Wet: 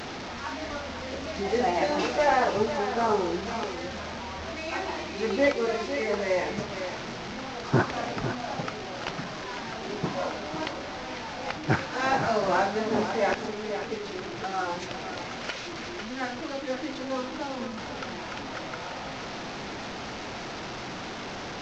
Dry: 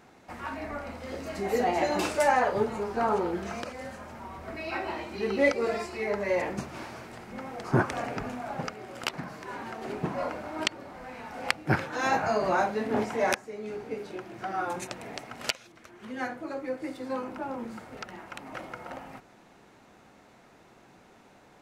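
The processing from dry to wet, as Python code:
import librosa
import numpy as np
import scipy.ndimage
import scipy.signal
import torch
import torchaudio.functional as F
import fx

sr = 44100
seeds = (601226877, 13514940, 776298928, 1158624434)

y = fx.delta_mod(x, sr, bps=32000, step_db=-32.0)
y = y + 10.0 ** (-9.5 / 20.0) * np.pad(y, (int(502 * sr / 1000.0), 0))[:len(y)]
y = F.gain(torch.from_numpy(y), 1.0).numpy()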